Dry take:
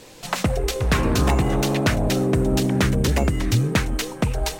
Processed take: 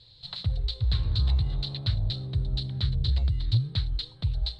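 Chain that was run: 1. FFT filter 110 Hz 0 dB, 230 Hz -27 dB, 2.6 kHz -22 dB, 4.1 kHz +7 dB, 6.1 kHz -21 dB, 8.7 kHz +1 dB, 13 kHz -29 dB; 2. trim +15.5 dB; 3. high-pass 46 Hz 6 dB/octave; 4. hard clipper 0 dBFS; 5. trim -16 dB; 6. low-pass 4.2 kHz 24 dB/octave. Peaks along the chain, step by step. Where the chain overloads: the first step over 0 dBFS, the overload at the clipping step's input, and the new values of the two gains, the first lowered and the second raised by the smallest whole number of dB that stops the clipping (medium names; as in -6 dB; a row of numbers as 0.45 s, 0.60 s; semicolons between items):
-11.0 dBFS, +4.5 dBFS, +3.5 dBFS, 0.0 dBFS, -16.0 dBFS, -15.5 dBFS; step 2, 3.5 dB; step 2 +11.5 dB, step 5 -12 dB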